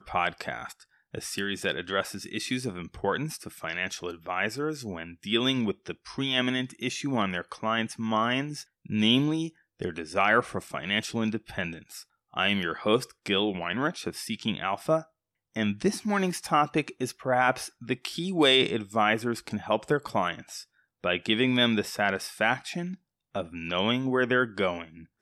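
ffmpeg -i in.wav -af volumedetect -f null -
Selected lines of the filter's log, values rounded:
mean_volume: -28.9 dB
max_volume: -10.0 dB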